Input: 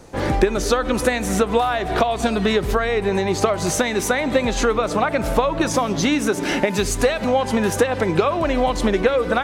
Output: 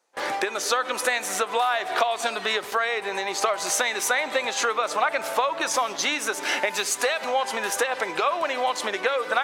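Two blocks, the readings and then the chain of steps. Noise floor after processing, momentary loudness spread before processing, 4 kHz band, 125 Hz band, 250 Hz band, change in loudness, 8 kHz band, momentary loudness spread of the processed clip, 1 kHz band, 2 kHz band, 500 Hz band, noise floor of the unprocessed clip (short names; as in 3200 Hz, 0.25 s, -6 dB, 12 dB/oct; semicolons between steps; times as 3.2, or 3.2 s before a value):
-36 dBFS, 2 LU, 0.0 dB, under -25 dB, -18.5 dB, -4.5 dB, 0.0 dB, 3 LU, -2.0 dB, 0.0 dB, -8.0 dB, -27 dBFS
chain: HPF 770 Hz 12 dB/oct; gate with hold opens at -21 dBFS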